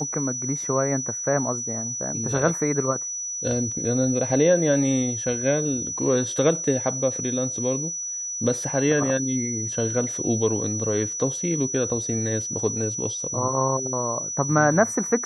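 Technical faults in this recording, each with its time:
whistle 5,900 Hz −28 dBFS

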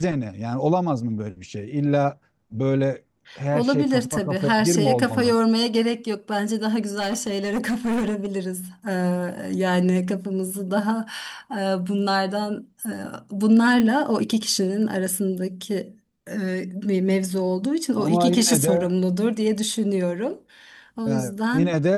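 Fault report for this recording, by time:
0:06.99–0:08.26: clipping −20 dBFS
0:13.80: click −10 dBFS

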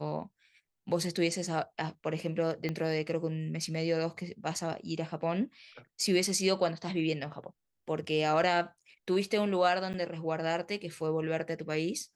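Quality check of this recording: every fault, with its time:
0:02.69: click −21 dBFS
0:09.93–0:09.94: drop-out 9.3 ms

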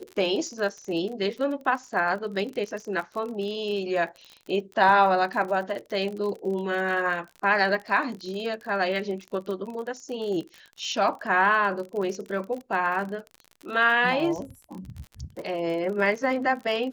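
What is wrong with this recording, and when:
surface crackle 42 per second −33 dBFS

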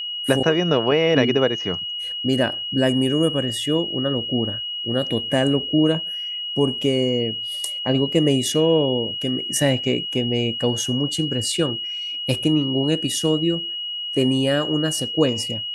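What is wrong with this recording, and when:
whistle 2,900 Hz −26 dBFS

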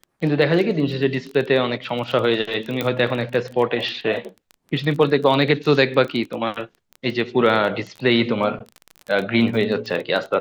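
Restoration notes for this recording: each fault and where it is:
surface crackle 19 per second −26 dBFS
0:02.81: click −9 dBFS

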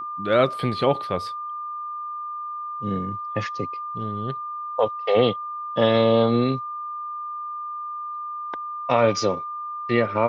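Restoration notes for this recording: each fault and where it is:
whistle 1,200 Hz −29 dBFS

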